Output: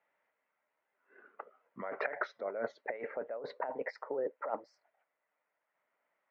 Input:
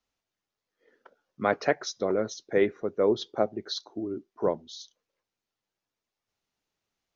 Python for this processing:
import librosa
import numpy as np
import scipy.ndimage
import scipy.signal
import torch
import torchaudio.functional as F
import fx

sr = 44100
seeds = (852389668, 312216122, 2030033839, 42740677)

y = fx.speed_glide(x, sr, from_pct=65, to_pct=162)
y = fx.over_compress(y, sr, threshold_db=-35.0, ratio=-1.0)
y = fx.cabinet(y, sr, low_hz=340.0, low_slope=12, high_hz=2300.0, hz=(340.0, 600.0, 920.0, 1400.0, 2000.0), db=(-6, 8, 5, 4, 8))
y = F.gain(torch.from_numpy(y), -3.0).numpy()